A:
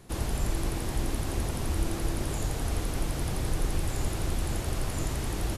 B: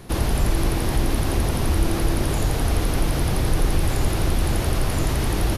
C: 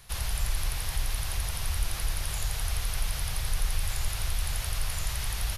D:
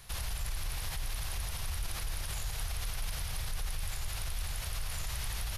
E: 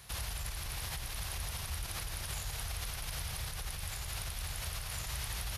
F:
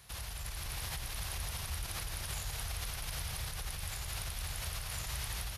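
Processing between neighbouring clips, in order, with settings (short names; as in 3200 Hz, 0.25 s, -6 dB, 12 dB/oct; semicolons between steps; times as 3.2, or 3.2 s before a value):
bell 7600 Hz -8 dB 0.45 oct; in parallel at -2.5 dB: limiter -26.5 dBFS, peak gain reduction 10.5 dB; on the sum: gain +6 dB
passive tone stack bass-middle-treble 10-0-10; gain -2 dB
limiter -27.5 dBFS, peak gain reduction 11 dB
HPF 50 Hz
AGC gain up to 4 dB; gain -4 dB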